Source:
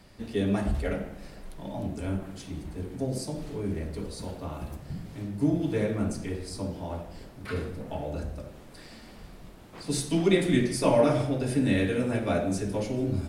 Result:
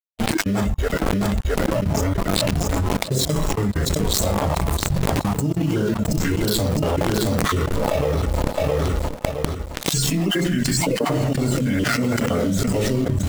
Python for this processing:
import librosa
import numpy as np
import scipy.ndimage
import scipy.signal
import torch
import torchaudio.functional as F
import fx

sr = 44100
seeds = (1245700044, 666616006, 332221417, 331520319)

p1 = fx.spec_dropout(x, sr, seeds[0], share_pct=22)
p2 = fx.formant_shift(p1, sr, semitones=-3)
p3 = fx.quant_dither(p2, sr, seeds[1], bits=6, dither='none')
p4 = p2 + F.gain(torch.from_numpy(p3), -4.0).numpy()
p5 = np.sign(p4) * np.maximum(np.abs(p4) - 10.0 ** (-40.5 / 20.0), 0.0)
p6 = fx.noise_reduce_blind(p5, sr, reduce_db=8)
p7 = p6 + fx.echo_feedback(p6, sr, ms=665, feedback_pct=33, wet_db=-19.5, dry=0)
p8 = fx.env_flatten(p7, sr, amount_pct=100)
y = F.gain(torch.from_numpy(p8), -4.5).numpy()